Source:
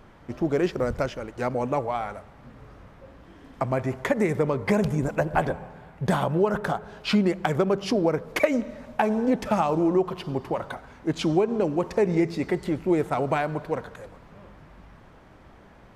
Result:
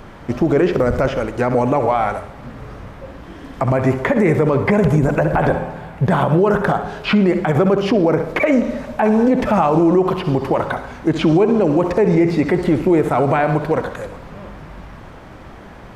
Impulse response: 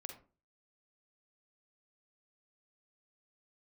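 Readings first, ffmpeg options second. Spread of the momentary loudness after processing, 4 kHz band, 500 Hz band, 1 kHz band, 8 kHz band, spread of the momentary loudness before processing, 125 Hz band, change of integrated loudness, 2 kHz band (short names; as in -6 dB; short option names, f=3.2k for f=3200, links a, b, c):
19 LU, +5.0 dB, +9.0 dB, +8.5 dB, n/a, 9 LU, +10.5 dB, +9.0 dB, +8.5 dB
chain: -filter_complex "[0:a]acrossover=split=2700[a][b];[b]acompressor=threshold=-51dB:ratio=4:attack=1:release=60[c];[a][c]amix=inputs=2:normalize=0,asplit=2[d][e];[1:a]atrim=start_sample=2205,adelay=65[f];[e][f]afir=irnorm=-1:irlink=0,volume=-7.5dB[g];[d][g]amix=inputs=2:normalize=0,alimiter=level_in=18.5dB:limit=-1dB:release=50:level=0:latency=1,volume=-5.5dB"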